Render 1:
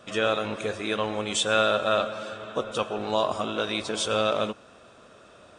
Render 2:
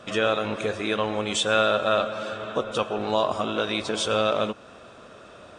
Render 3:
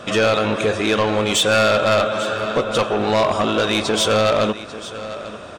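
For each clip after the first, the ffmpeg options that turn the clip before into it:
-filter_complex "[0:a]highshelf=f=7500:g=-7.5,asplit=2[s0][s1];[s1]acompressor=threshold=0.02:ratio=6,volume=0.891[s2];[s0][s2]amix=inputs=2:normalize=0"
-af "aeval=exprs='0.473*(cos(1*acos(clip(val(0)/0.473,-1,1)))-cos(1*PI/2))+0.211*(cos(5*acos(clip(val(0)/0.473,-1,1)))-cos(5*PI/2))':c=same,aecho=1:1:844:0.158,asoftclip=type=tanh:threshold=0.355"

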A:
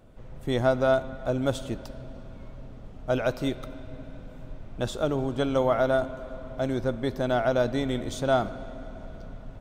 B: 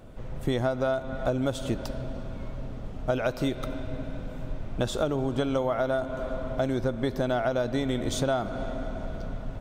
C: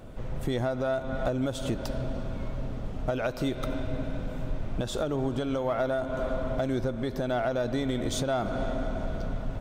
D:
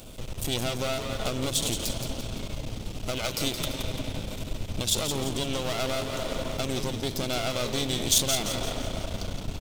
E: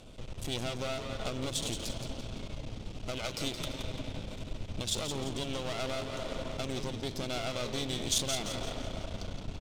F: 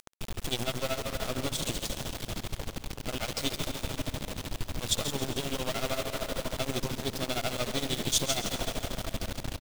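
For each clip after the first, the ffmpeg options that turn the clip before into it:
-af "acompressor=threshold=0.0355:ratio=12,volume=2.11"
-filter_complex "[0:a]asplit=2[s0][s1];[s1]asoftclip=type=hard:threshold=0.0422,volume=0.355[s2];[s0][s2]amix=inputs=2:normalize=0,alimiter=limit=0.112:level=0:latency=1:release=249"
-filter_complex "[0:a]aeval=exprs='clip(val(0),-1,0.0075)':c=same,aexciter=amount=4:drive=7.9:freq=2500,asplit=6[s0][s1][s2][s3][s4][s5];[s1]adelay=171,afreqshift=-110,volume=0.447[s6];[s2]adelay=342,afreqshift=-220,volume=0.207[s7];[s3]adelay=513,afreqshift=-330,volume=0.0944[s8];[s4]adelay=684,afreqshift=-440,volume=0.0437[s9];[s5]adelay=855,afreqshift=-550,volume=0.02[s10];[s0][s6][s7][s8][s9][s10]amix=inputs=6:normalize=0"
-af "adynamicsmooth=sensitivity=7:basefreq=6300,volume=0.501"
-af "tremolo=f=13:d=0.83,acrusher=bits=6:mix=0:aa=0.000001,aecho=1:1:134|268|402|536|670|804:0.2|0.114|0.0648|0.037|0.0211|0.012,volume=2"

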